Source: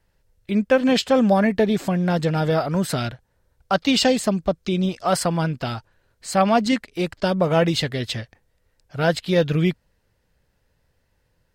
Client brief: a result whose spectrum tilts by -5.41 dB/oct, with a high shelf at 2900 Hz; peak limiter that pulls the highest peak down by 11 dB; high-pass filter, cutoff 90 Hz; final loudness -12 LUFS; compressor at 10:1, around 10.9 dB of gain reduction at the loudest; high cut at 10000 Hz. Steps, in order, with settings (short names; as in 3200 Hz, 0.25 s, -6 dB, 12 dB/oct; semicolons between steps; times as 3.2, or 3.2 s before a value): HPF 90 Hz; LPF 10000 Hz; high shelf 2900 Hz -5 dB; compressor 10:1, threshold -24 dBFS; gain +21 dB; limiter -3 dBFS